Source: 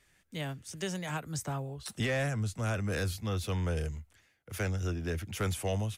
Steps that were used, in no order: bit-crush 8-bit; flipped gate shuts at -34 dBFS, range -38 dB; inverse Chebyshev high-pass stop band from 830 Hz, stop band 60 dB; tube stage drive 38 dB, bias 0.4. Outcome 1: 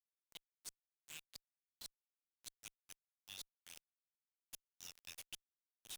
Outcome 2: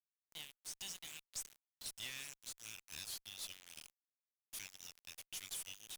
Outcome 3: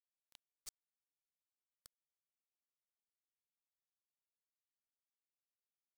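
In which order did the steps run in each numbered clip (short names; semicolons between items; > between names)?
inverse Chebyshev high-pass > flipped gate > bit-crush > tube stage; inverse Chebyshev high-pass > bit-crush > tube stage > flipped gate; flipped gate > inverse Chebyshev high-pass > tube stage > bit-crush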